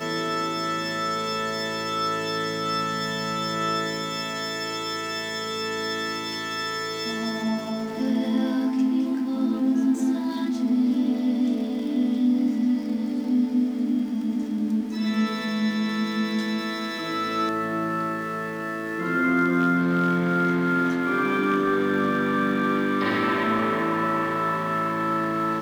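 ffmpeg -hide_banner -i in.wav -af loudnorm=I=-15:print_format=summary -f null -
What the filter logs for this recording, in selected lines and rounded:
Input Integrated:    -24.6 LUFS
Input True Peak:     -12.2 dBTP
Input LRA:             4.2 LU
Input Threshold:     -34.6 LUFS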